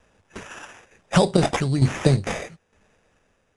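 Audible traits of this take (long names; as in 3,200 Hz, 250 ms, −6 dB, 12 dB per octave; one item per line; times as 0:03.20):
a quantiser's noise floor 12 bits, dither none
tremolo saw down 1.1 Hz, depth 65%
aliases and images of a low sample rate 4,300 Hz, jitter 0%
Ogg Vorbis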